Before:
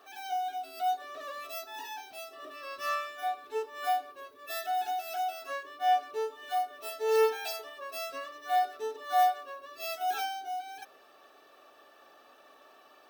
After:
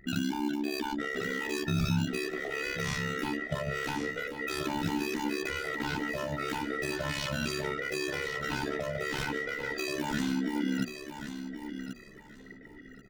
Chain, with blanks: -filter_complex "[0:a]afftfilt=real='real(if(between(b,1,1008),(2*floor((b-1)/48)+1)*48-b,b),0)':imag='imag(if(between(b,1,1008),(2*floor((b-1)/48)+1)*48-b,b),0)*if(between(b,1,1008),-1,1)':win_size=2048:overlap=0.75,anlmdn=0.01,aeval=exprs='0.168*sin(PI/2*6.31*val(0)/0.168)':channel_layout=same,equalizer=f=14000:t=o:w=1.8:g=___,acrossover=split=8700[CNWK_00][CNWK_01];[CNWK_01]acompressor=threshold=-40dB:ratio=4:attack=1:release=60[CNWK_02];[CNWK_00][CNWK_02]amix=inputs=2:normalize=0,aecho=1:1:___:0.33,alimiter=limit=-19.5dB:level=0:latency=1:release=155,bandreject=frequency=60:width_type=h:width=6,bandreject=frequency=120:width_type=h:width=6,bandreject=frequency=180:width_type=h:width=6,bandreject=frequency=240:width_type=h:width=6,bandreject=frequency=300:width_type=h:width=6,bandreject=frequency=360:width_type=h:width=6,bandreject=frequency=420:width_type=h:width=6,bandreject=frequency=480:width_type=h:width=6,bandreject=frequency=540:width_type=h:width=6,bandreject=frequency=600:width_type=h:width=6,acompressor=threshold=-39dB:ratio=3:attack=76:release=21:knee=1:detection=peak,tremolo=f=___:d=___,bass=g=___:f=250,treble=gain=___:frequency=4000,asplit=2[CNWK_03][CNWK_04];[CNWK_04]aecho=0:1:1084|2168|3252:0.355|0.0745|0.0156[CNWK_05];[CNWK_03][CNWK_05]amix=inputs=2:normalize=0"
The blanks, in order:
3, 4.7, 69, 0.857, 12, 0